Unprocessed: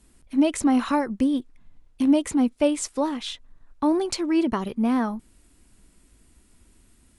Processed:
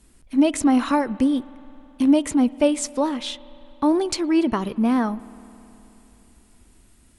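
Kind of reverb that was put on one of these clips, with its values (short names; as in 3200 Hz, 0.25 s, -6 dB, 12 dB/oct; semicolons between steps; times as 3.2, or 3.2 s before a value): spring tank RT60 3.4 s, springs 53 ms, chirp 65 ms, DRR 19 dB; gain +2.5 dB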